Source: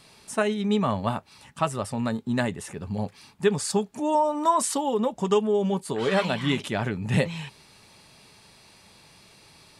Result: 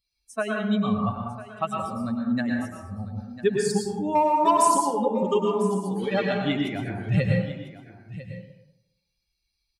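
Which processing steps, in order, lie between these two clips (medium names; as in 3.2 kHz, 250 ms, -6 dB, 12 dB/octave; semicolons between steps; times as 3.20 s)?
expander on every frequency bin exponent 2; bass shelf 210 Hz +4.5 dB; 4.15–4.63 s: waveshaping leveller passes 1; on a send: delay 999 ms -15.5 dB; on the sum: plate-style reverb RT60 0.92 s, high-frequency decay 0.4×, pre-delay 95 ms, DRR -0.5 dB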